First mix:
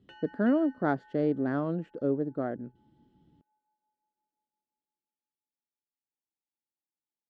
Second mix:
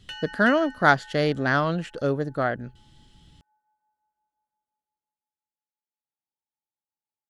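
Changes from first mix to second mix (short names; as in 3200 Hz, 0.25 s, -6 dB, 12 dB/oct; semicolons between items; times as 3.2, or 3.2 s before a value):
background -4.5 dB; master: remove band-pass 300 Hz, Q 1.5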